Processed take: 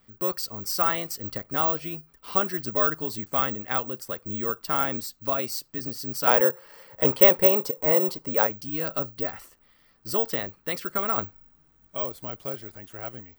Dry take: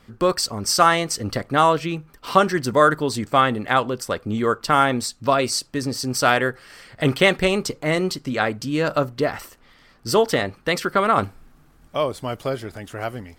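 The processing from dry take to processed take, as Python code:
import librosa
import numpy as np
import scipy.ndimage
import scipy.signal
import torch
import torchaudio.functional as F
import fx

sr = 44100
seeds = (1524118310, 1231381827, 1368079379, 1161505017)

y = fx.small_body(x, sr, hz=(530.0, 890.0), ring_ms=20, db=15, at=(6.27, 8.47))
y = (np.kron(y[::2], np.eye(2)[0]) * 2)[:len(y)]
y = y * librosa.db_to_amplitude(-11.0)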